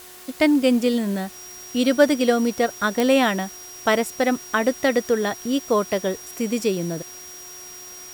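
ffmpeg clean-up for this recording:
-af "adeclick=t=4,bandreject=f=363.5:t=h:w=4,bandreject=f=727:t=h:w=4,bandreject=f=1.0905k:t=h:w=4,bandreject=f=1.454k:t=h:w=4,bandreject=f=1.8175k:t=h:w=4,bandreject=f=5.7k:w=30,afwtdn=0.0071"

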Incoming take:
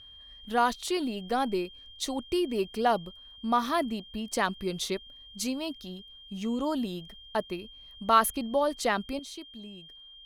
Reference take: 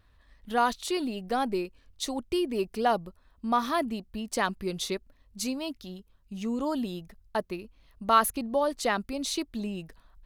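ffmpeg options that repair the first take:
-af "bandreject=f=3.2k:w=30,asetnsamples=n=441:p=0,asendcmd='9.19 volume volume 12dB',volume=0dB"

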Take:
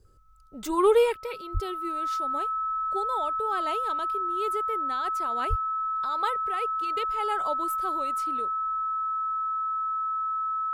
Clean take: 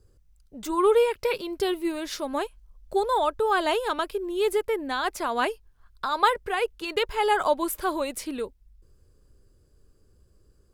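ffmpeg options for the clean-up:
-filter_complex "[0:a]bandreject=f=1.3k:w=30,asplit=3[a][b][c];[a]afade=t=out:st=1.53:d=0.02[d];[b]highpass=f=140:w=0.5412,highpass=f=140:w=1.3066,afade=t=in:st=1.53:d=0.02,afade=t=out:st=1.65:d=0.02[e];[c]afade=t=in:st=1.65:d=0.02[f];[d][e][f]amix=inputs=3:normalize=0,asplit=3[g][h][i];[g]afade=t=out:st=5.49:d=0.02[j];[h]highpass=f=140:w=0.5412,highpass=f=140:w=1.3066,afade=t=in:st=5.49:d=0.02,afade=t=out:st=5.61:d=0.02[k];[i]afade=t=in:st=5.61:d=0.02[l];[j][k][l]amix=inputs=3:normalize=0,asetnsamples=n=441:p=0,asendcmd='1.17 volume volume 9.5dB',volume=0dB"

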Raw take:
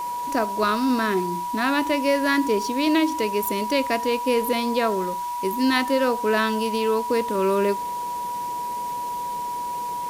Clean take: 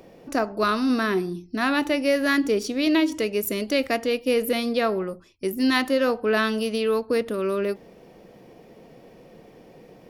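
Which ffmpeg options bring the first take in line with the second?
-af "bandreject=f=970:w=30,afwtdn=0.0071,asetnsamples=n=441:p=0,asendcmd='7.35 volume volume -3.5dB',volume=0dB"

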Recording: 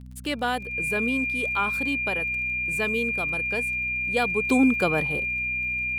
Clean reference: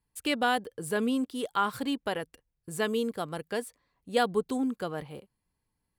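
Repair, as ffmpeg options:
-af "adeclick=t=4,bandreject=f=62.6:t=h:w=4,bandreject=f=125.2:t=h:w=4,bandreject=f=187.8:t=h:w=4,bandreject=f=250.4:t=h:w=4,bandreject=f=2.4k:w=30,asetnsamples=n=441:p=0,asendcmd='4.43 volume volume -10dB',volume=0dB"

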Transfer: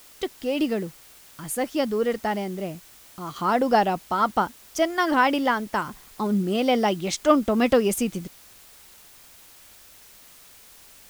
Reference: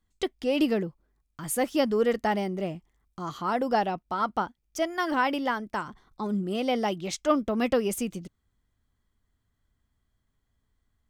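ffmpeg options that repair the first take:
-af "afwtdn=0.0032,asetnsamples=n=441:p=0,asendcmd='3.36 volume volume -5.5dB',volume=0dB"

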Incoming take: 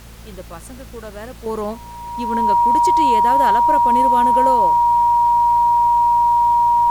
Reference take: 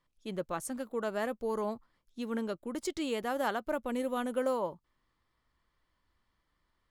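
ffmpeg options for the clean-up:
-af "bandreject=f=56.4:t=h:w=4,bandreject=f=112.8:t=h:w=4,bandreject=f=169.2:t=h:w=4,bandreject=f=225.6:t=h:w=4,bandreject=f=950:w=30,agate=range=-21dB:threshold=-28dB,asetnsamples=n=441:p=0,asendcmd='1.46 volume volume -9.5dB',volume=0dB"

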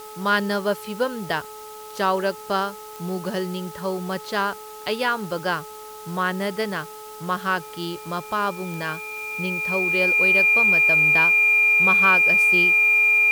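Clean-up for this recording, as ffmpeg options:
-af "adeclick=t=4,bandreject=f=428.5:t=h:w=4,bandreject=f=857:t=h:w=4,bandreject=f=1.2855k:t=h:w=4,bandreject=f=2.4k:w=30,afftdn=nr=28:nf=-39"

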